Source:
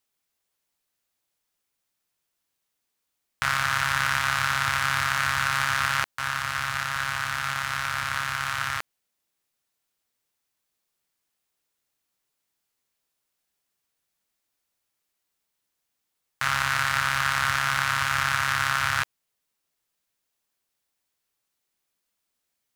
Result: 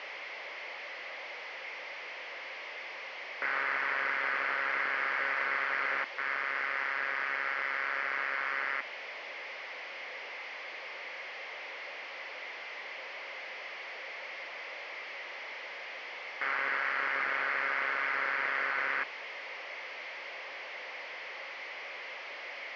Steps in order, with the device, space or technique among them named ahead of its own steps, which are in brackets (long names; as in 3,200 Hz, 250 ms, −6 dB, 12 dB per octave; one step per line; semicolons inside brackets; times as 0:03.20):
digital answering machine (band-pass filter 390–3,200 Hz; linear delta modulator 32 kbit/s, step −36.5 dBFS; loudspeaker in its box 470–4,400 Hz, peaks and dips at 540 Hz +8 dB, 1,400 Hz −4 dB, 2,100 Hz +10 dB, 3,800 Hz −9 dB)
level −1.5 dB